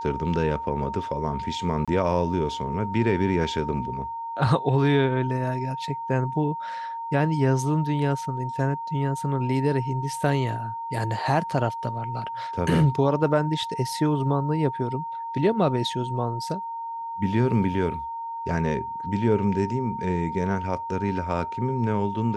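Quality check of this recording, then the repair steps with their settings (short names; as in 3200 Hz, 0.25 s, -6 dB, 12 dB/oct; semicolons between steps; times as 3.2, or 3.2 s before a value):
tone 920 Hz -30 dBFS
1.85–1.88 gap 26 ms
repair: notch 920 Hz, Q 30; interpolate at 1.85, 26 ms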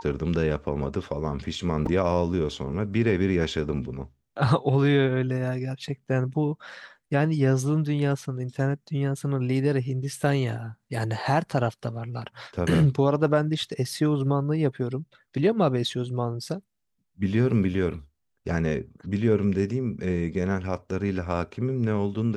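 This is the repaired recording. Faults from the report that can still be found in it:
none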